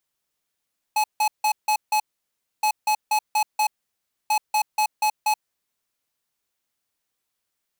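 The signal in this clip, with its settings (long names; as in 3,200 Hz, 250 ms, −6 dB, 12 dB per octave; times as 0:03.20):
beeps in groups square 853 Hz, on 0.08 s, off 0.16 s, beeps 5, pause 0.63 s, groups 3, −20 dBFS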